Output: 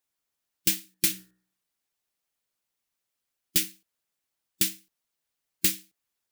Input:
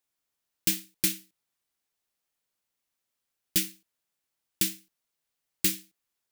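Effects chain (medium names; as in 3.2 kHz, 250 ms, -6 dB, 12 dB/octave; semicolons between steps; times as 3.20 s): harmonic-percussive split harmonic -5 dB; 0.79–3.64 s: de-hum 61.98 Hz, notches 30; trim +2 dB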